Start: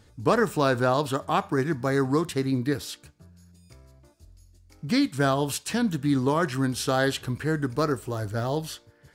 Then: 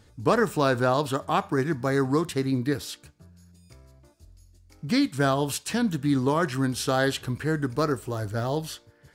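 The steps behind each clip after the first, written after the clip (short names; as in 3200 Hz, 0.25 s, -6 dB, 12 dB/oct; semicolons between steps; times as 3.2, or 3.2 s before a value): nothing audible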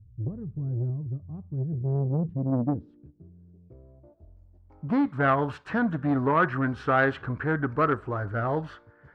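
low-pass sweep 110 Hz -> 1400 Hz, 1.56–5.4; core saturation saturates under 650 Hz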